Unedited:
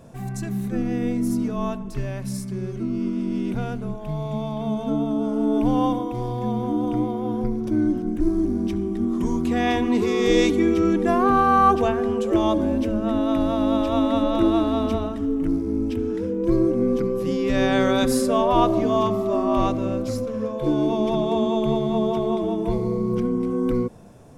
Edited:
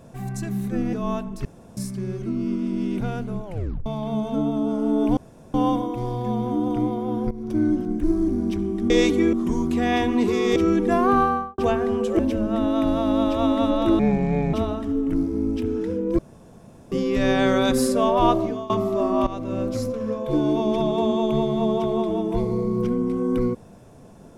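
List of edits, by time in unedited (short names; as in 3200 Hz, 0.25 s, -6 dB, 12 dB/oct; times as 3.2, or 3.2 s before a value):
0.93–1.47 cut
1.99–2.31 room tone
3.99 tape stop 0.41 s
5.71 insert room tone 0.37 s
7.48–7.73 fade in, from -14.5 dB
10.3–10.73 move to 9.07
11.32–11.75 studio fade out
12.36–12.72 cut
14.52–14.87 speed 64%
16.52–17.25 room tone
18.64–19.03 fade out, to -21.5 dB
19.6–19.96 fade in, from -16 dB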